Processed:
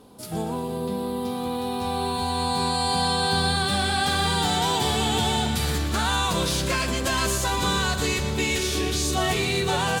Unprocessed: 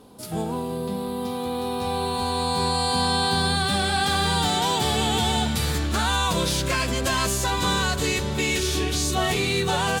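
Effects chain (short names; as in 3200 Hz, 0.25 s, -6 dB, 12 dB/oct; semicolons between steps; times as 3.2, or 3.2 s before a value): split-band echo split 560 Hz, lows 0.308 s, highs 0.119 s, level -11 dB; gain -1 dB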